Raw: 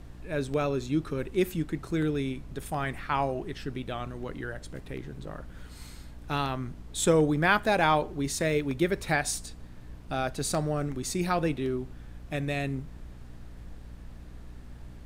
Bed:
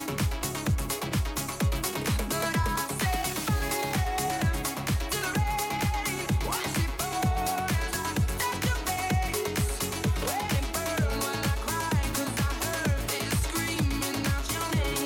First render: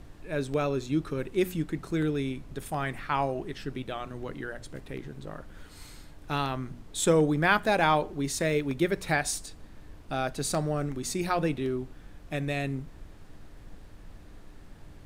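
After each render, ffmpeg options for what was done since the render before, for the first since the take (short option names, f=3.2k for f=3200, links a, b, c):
-af "bandreject=f=60:t=h:w=4,bandreject=f=120:t=h:w=4,bandreject=f=180:t=h:w=4,bandreject=f=240:t=h:w=4"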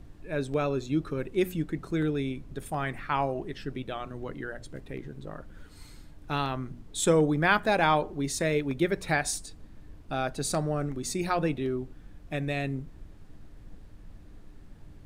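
-af "afftdn=nr=6:nf=-49"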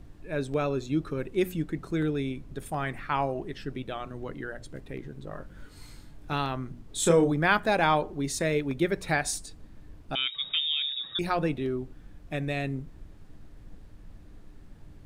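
-filter_complex "[0:a]asettb=1/sr,asplit=3[a][b][c];[a]atrim=end=5.294[d];[b]atrim=start=5.29:end=6.33,asetpts=PTS-STARTPTS,afade=t=in:d=0.004:c=qsin,afade=t=out:st=1.036:d=0.004:c=qsin,asplit=2[e][f];[f]adelay=21,volume=-4dB[g];[e][g]amix=inputs=2:normalize=0,atrim=end_sample=45864[h];[c]atrim=start=6.326[i];[d][h]acrossfade=d=0.004:c1=hsin:c2=qsin[j];[j][i]acrossfade=d=0.004:c1=qsin:c2=hsin,asettb=1/sr,asplit=3[k][l][m];[k]atrim=end=6.864[n];[l]atrim=start=6.86:end=7.32,asetpts=PTS-STARTPTS,afade=t=in:d=0.004:c=qsin,afade=t=out:st=0.456:d=0.004:c=qsin,asplit=2[o][p];[p]adelay=29,volume=-5dB[q];[o][q]amix=inputs=2:normalize=0,atrim=end_sample=20286[r];[m]atrim=start=7.316[s];[n][r]acrossfade=d=0.004:c1=hsin:c2=qsin[t];[t][s]acrossfade=d=0.004:c1=qsin:c2=hsin,asettb=1/sr,asplit=3[u][v][w];[u]atrim=end=10.154[x];[v]atrim=start=10.15:end=11.19,asetpts=PTS-STARTPTS,afade=t=in:d=0.004:c=qsin,afade=t=out:st=1.036:d=0.004:c=qsin,lowpass=f=3.2k:t=q:w=0.5098,lowpass=f=3.2k:t=q:w=0.6013,lowpass=f=3.2k:t=q:w=0.9,lowpass=f=3.2k:t=q:w=2.563,afreqshift=-3800[y];[w]atrim=start=11.186[z];[x][y]acrossfade=d=0.004:c1=hsin:c2=qsin[aa];[aa][z]acrossfade=d=0.004:c1=qsin:c2=hsin"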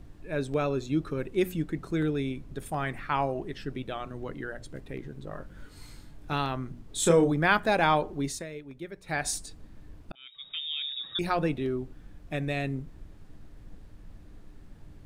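-filter_complex "[0:a]asplit=4[a][b][c][d];[a]atrim=end=8.46,asetpts=PTS-STARTPTS,afade=t=out:st=8.24:d=0.22:silence=0.199526[e];[b]atrim=start=8.46:end=9.04,asetpts=PTS-STARTPTS,volume=-14dB[f];[c]atrim=start=9.04:end=10.12,asetpts=PTS-STARTPTS,afade=t=in:d=0.22:silence=0.199526,afade=t=out:st=1.076:d=0.004:c=hsin[g];[d]atrim=start=10.12,asetpts=PTS-STARTPTS,afade=t=in:d=1.12[h];[e][f][g][h]concat=n=4:v=0:a=1"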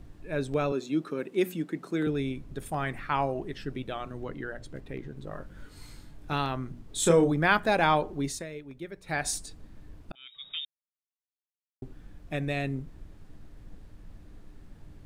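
-filter_complex "[0:a]asettb=1/sr,asplit=3[a][b][c];[a]atrim=end=0.724[d];[b]atrim=start=0.72:end=2.07,asetpts=PTS-STARTPTS,afade=t=in:d=0.004:c=qsin,afade=t=out:st=1.346:d=0.004:c=qsin,highpass=f=180:w=0.5412,highpass=f=180:w=1.3066[e];[c]atrim=start=2.066[f];[d][e]acrossfade=d=0.004:c1=hsin:c2=qsin[g];[g][f]acrossfade=d=0.004:c1=qsin:c2=hsin,asettb=1/sr,asplit=3[h][i][j];[h]atrim=end=4.254[k];[i]atrim=start=4.25:end=5.17,asetpts=PTS-STARTPTS,afade=t=in:d=0.004:c=qsin,afade=t=out:st=0.916:d=0.004:c=qsin,equalizer=f=11k:t=o:w=1.4:g=-4.5[l];[j]atrim=start=5.166[m];[k][l]acrossfade=d=0.004:c1=hsin:c2=qsin[n];[n][m]acrossfade=d=0.004:c1=qsin:c2=hsin,asplit=3[o][p][q];[o]atrim=end=10.65,asetpts=PTS-STARTPTS,afade=t=out:st=10.646:d=0.004:c=hsin[r];[p]atrim=start=10.65:end=11.82,asetpts=PTS-STARTPTS,volume=0[s];[q]atrim=start=11.82,asetpts=PTS-STARTPTS,afade=t=in:d=0.004:c=hsin[t];[r][s][t]concat=n=3:v=0:a=1"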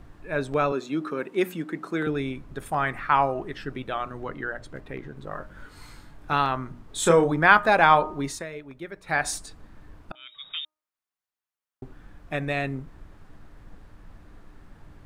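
-af "equalizer=f=1.2k:w=0.71:g=9.5,bandreject=f=308.7:t=h:w=4,bandreject=f=617.4:t=h:w=4,bandreject=f=926.1:t=h:w=4,bandreject=f=1.2348k:t=h:w=4"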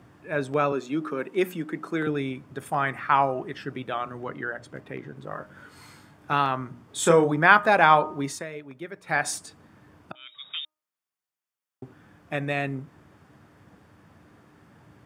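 -af "highpass=f=98:w=0.5412,highpass=f=98:w=1.3066,bandreject=f=4k:w=12"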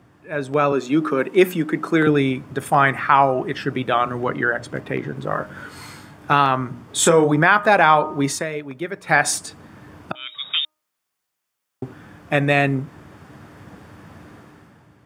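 -af "alimiter=limit=-12.5dB:level=0:latency=1:release=366,dynaudnorm=f=110:g=11:m=12dB"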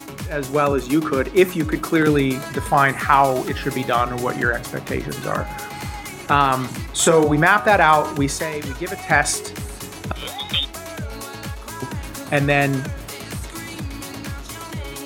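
-filter_complex "[1:a]volume=-3dB[a];[0:a][a]amix=inputs=2:normalize=0"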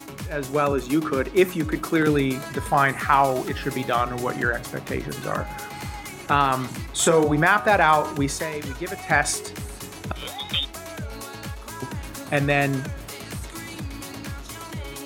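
-af "volume=-3.5dB"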